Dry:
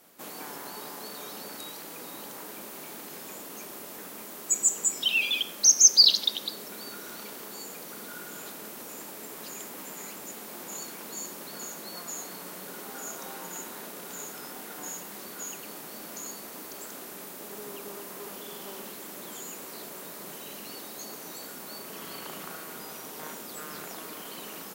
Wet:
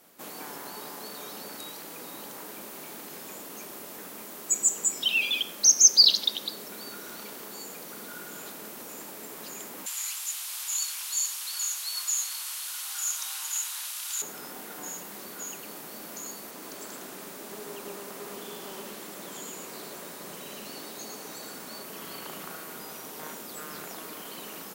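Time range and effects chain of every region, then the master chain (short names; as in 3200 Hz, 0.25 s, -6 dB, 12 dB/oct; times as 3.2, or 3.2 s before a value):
9.86–14.22 HPF 1000 Hz 24 dB/oct + band shelf 5600 Hz +10.5 dB 2.5 oct
16.51–21.83 bell 13000 Hz -5.5 dB 0.49 oct + echo 0.109 s -4 dB
whole clip: dry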